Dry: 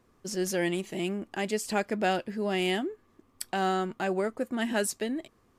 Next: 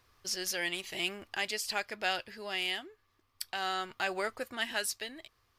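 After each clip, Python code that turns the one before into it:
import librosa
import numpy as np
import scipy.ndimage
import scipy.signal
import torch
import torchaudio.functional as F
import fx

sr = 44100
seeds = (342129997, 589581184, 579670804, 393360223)

y = fx.curve_eq(x, sr, hz=(110.0, 190.0, 1100.0, 4900.0, 7500.0, 14000.0), db=(0, -16, 1, 10, 0, 7))
y = fx.rider(y, sr, range_db=10, speed_s=0.5)
y = F.gain(torch.from_numpy(y), -3.5).numpy()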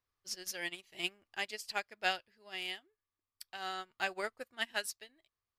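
y = fx.upward_expand(x, sr, threshold_db=-44.0, expansion=2.5)
y = F.gain(torch.from_numpy(y), 1.0).numpy()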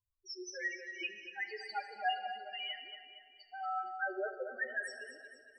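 y = fx.spec_topn(x, sr, count=2)
y = fx.echo_feedback(y, sr, ms=233, feedback_pct=47, wet_db=-10.0)
y = fx.rev_plate(y, sr, seeds[0], rt60_s=2.0, hf_ratio=0.75, predelay_ms=0, drr_db=8.5)
y = F.gain(torch.from_numpy(y), 7.0).numpy()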